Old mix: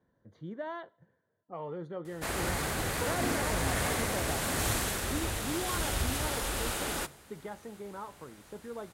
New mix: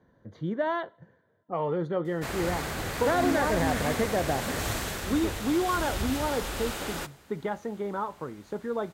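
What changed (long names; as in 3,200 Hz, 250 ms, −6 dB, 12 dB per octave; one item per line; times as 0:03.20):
speech +10.5 dB
master: add parametric band 10,000 Hz −7 dB 0.62 octaves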